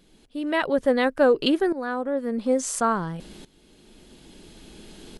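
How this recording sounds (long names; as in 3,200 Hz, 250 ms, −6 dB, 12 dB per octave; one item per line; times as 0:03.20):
tremolo saw up 0.58 Hz, depth 85%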